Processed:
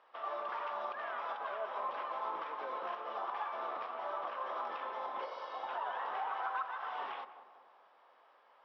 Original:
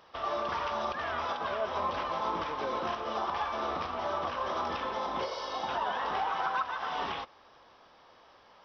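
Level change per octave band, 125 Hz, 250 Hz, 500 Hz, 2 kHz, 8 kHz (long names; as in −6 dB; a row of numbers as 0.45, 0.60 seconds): below −25 dB, −16.0 dB, −7.5 dB, −6.5 dB, can't be measured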